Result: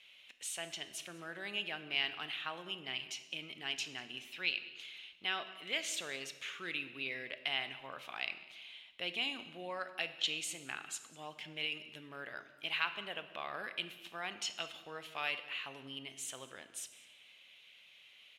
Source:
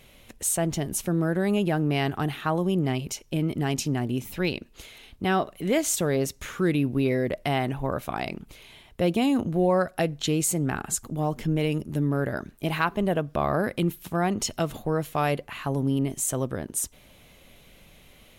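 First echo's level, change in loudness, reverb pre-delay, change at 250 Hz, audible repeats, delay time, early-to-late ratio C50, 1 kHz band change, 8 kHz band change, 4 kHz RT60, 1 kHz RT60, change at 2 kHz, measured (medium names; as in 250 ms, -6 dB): -21.5 dB, -13.0 dB, 23 ms, -27.5 dB, 1, 198 ms, 11.5 dB, -15.5 dB, -15.0 dB, 0.95 s, 1.2 s, -5.0 dB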